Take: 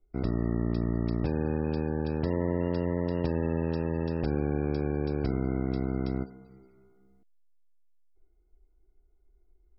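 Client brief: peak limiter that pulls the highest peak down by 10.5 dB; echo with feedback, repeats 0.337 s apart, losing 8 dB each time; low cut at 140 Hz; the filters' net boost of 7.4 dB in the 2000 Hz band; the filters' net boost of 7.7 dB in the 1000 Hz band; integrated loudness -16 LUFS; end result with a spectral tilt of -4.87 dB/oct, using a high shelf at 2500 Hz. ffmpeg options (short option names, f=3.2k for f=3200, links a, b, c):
-af "highpass=140,equalizer=f=1k:t=o:g=8,equalizer=f=2k:t=o:g=3,highshelf=f=2.5k:g=8,alimiter=level_in=0.5dB:limit=-24dB:level=0:latency=1,volume=-0.5dB,aecho=1:1:337|674|1011|1348|1685:0.398|0.159|0.0637|0.0255|0.0102,volume=18dB"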